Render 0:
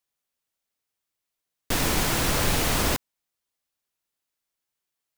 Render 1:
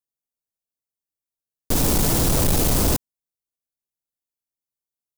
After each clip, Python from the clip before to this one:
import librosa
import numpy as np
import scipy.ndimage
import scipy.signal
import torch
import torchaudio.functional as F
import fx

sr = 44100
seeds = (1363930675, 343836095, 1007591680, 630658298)

y = fx.peak_eq(x, sr, hz=2000.0, db=-14.5, octaves=2.4)
y = fx.leveller(y, sr, passes=3)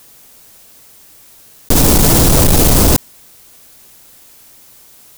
y = fx.env_flatten(x, sr, amount_pct=70)
y = F.gain(torch.from_numpy(y), 8.0).numpy()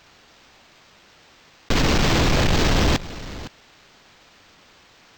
y = x + 10.0 ** (-16.0 / 20.0) * np.pad(x, (int(511 * sr / 1000.0), 0))[:len(x)]
y = np.interp(np.arange(len(y)), np.arange(len(y))[::4], y[::4])
y = F.gain(torch.from_numpy(y), -8.5).numpy()